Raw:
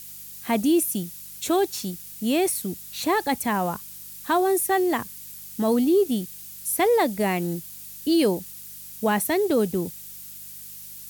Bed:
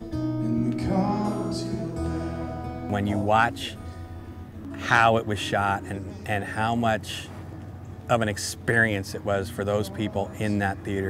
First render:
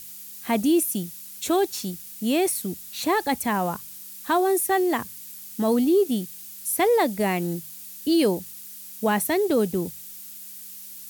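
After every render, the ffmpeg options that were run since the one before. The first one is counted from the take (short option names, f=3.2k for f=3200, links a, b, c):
-af "bandreject=f=50:t=h:w=4,bandreject=f=100:t=h:w=4,bandreject=f=150:t=h:w=4"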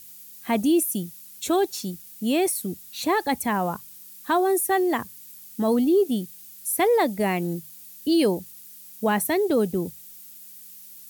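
-af "afftdn=nr=6:nf=-41"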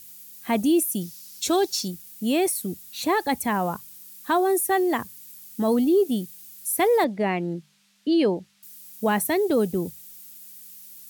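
-filter_complex "[0:a]asettb=1/sr,asplit=3[a][b][c];[a]atrim=end=1.014[d];[b]atrim=start=1.01:end=1.88,asetpts=PTS-STARTPTS,afade=t=in:d=0.004:c=qsin,afade=t=out:st=0.866:d=0.004:c=qsin,equalizer=f=5.1k:t=o:w=0.86:g=9.5[e];[c]atrim=start=1.876[f];[d][e]acrossfade=d=0.004:c1=hsin:c2=qsin[g];[g][f]acrossfade=d=0.004:c1=qsin:c2=hsin,asettb=1/sr,asplit=3[h][i][j];[h]atrim=end=7.044[k];[i]atrim=start=7.04:end=8.63,asetpts=PTS-STARTPTS,afade=t=in:d=0.004:c=qsin,afade=t=out:st=1.586:d=0.004:c=qsin,highpass=150,lowpass=3.5k[l];[j]atrim=start=8.626[m];[k][l]acrossfade=d=0.004:c1=hsin:c2=qsin[n];[n][m]acrossfade=d=0.004:c1=qsin:c2=hsin"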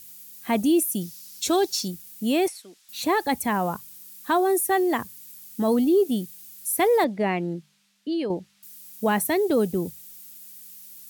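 -filter_complex "[0:a]asettb=1/sr,asplit=3[a][b][c];[a]atrim=end=2.484[d];[b]atrim=start=2.48:end=2.89,asetpts=PTS-STARTPTS,afade=t=in:d=0.004:c=qsin,afade=t=out:st=0.406:d=0.004:c=qsin,highpass=760,lowpass=5.1k[e];[c]atrim=start=2.886[f];[d][e]acrossfade=d=0.004:c1=hsin:c2=qsin[g];[g][f]acrossfade=d=0.004:c1=qsin:c2=hsin,asplit=2[h][i];[h]atrim=end=8.3,asetpts=PTS-STARTPTS,afade=t=out:st=7.44:d=0.86:silence=0.375837[j];[i]atrim=start=8.3,asetpts=PTS-STARTPTS,afade=t=in:d=0.004:c=hsin:silence=0.375837[k];[j][k]concat=n=2:v=0:a=1"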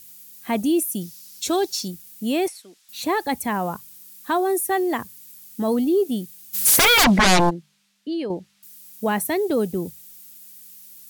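-filter_complex "[0:a]asplit=3[a][b][c];[a]afade=t=out:st=6.53:d=0.02[d];[b]aeval=exprs='0.266*sin(PI/2*7.08*val(0)/0.266)':c=same,afade=t=in:st=6.53:d=0.02,afade=t=out:st=7.49:d=0.02[e];[c]afade=t=in:st=7.49:d=0.02[f];[d][e][f]amix=inputs=3:normalize=0"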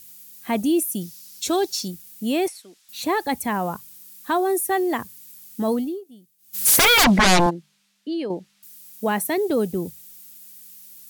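-filter_complex "[0:a]asettb=1/sr,asplit=3[a][b][c];[a]atrim=end=7.464[d];[b]atrim=start=7.46:end=9.38,asetpts=PTS-STARTPTS,afade=t=in:d=0.004:c=qsin,afade=t=out:st=1.916:d=0.004:c=qsin,highpass=150[e];[c]atrim=start=9.376[f];[d][e]acrossfade=d=0.004:c1=hsin:c2=qsin[g];[g][f]acrossfade=d=0.004:c1=qsin:c2=hsin,asplit=3[h][i][j];[h]atrim=end=6.01,asetpts=PTS-STARTPTS,afade=t=out:st=5.69:d=0.32:silence=0.0841395[k];[i]atrim=start=6.01:end=6.38,asetpts=PTS-STARTPTS,volume=-21.5dB[l];[j]atrim=start=6.38,asetpts=PTS-STARTPTS,afade=t=in:d=0.32:silence=0.0841395[m];[k][l][m]concat=n=3:v=0:a=1"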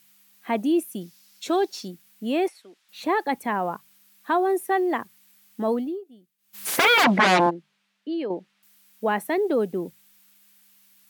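-af "highpass=190,bass=f=250:g=-4,treble=f=4k:g=-14"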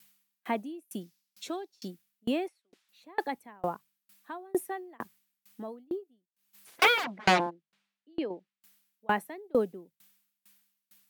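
-filter_complex "[0:a]acrossover=split=400|5100[a][b][c];[c]volume=31dB,asoftclip=hard,volume=-31dB[d];[a][b][d]amix=inputs=3:normalize=0,aeval=exprs='val(0)*pow(10,-34*if(lt(mod(2.2*n/s,1),2*abs(2.2)/1000),1-mod(2.2*n/s,1)/(2*abs(2.2)/1000),(mod(2.2*n/s,1)-2*abs(2.2)/1000)/(1-2*abs(2.2)/1000))/20)':c=same"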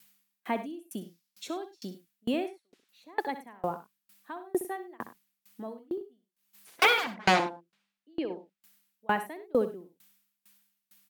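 -af "aecho=1:1:64|100:0.251|0.133"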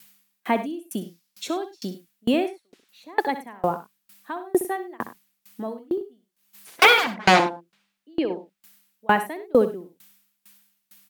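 -af "volume=8.5dB,alimiter=limit=-3dB:level=0:latency=1"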